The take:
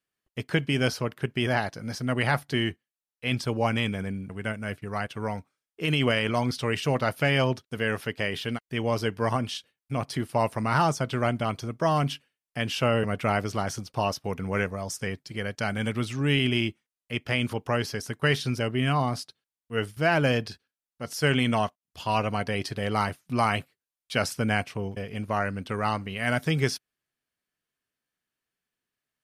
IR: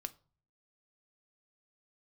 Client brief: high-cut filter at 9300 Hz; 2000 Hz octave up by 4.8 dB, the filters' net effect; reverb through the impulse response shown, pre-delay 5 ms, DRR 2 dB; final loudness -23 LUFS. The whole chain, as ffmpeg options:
-filter_complex "[0:a]lowpass=9.3k,equalizer=f=2k:t=o:g=6,asplit=2[a][b];[1:a]atrim=start_sample=2205,adelay=5[c];[b][c]afir=irnorm=-1:irlink=0,volume=0.5dB[d];[a][d]amix=inputs=2:normalize=0,volume=1dB"

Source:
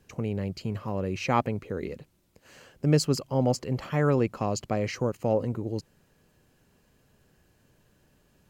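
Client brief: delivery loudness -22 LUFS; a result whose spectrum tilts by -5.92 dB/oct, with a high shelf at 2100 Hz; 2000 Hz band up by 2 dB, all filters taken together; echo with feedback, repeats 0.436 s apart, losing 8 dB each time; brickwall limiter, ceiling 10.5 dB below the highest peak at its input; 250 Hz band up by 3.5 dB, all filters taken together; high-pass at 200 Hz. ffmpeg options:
-af "highpass=200,equalizer=f=250:t=o:g=6.5,equalizer=f=2k:t=o:g=6,highshelf=f=2.1k:g=-6,alimiter=limit=-18dB:level=0:latency=1,aecho=1:1:436|872|1308|1744|2180:0.398|0.159|0.0637|0.0255|0.0102,volume=8.5dB"

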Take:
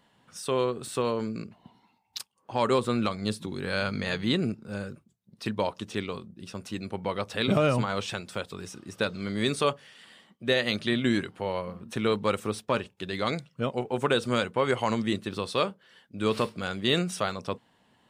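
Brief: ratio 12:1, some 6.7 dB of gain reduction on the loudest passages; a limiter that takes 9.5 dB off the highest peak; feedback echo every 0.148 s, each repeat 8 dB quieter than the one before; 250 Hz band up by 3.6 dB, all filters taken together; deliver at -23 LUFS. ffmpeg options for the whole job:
-af "equalizer=f=250:t=o:g=4.5,acompressor=threshold=-24dB:ratio=12,alimiter=limit=-23dB:level=0:latency=1,aecho=1:1:148|296|444|592|740:0.398|0.159|0.0637|0.0255|0.0102,volume=11.5dB"

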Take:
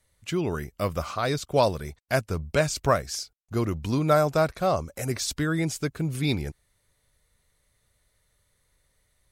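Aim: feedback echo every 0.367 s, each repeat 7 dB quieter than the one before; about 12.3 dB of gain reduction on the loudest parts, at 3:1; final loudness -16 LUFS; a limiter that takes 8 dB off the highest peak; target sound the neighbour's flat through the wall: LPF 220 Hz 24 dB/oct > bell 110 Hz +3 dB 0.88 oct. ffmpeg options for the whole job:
-af "acompressor=threshold=-33dB:ratio=3,alimiter=level_in=3dB:limit=-24dB:level=0:latency=1,volume=-3dB,lowpass=f=220:w=0.5412,lowpass=f=220:w=1.3066,equalizer=f=110:t=o:w=0.88:g=3,aecho=1:1:367|734|1101|1468|1835:0.447|0.201|0.0905|0.0407|0.0183,volume=25dB"

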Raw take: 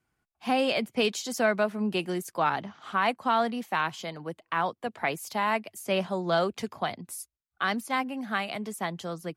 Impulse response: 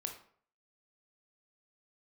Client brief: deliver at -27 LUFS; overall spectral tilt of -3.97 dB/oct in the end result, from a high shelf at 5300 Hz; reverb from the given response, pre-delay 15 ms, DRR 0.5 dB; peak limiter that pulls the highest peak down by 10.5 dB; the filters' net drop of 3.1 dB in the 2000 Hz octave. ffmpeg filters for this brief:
-filter_complex "[0:a]equalizer=f=2k:t=o:g=-5.5,highshelf=f=5.3k:g=8.5,alimiter=limit=-23.5dB:level=0:latency=1,asplit=2[a][b];[1:a]atrim=start_sample=2205,adelay=15[c];[b][c]afir=irnorm=-1:irlink=0,volume=0.5dB[d];[a][d]amix=inputs=2:normalize=0,volume=4.5dB"

